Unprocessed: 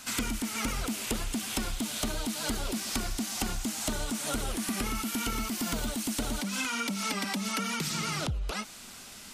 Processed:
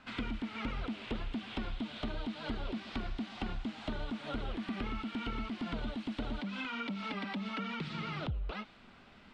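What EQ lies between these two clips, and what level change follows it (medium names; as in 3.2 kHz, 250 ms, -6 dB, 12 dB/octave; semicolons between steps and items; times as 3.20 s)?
low-pass 8.2 kHz 24 dB/octave; dynamic bell 3.6 kHz, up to +7 dB, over -50 dBFS, Q 1.4; distance through air 470 m; -4.0 dB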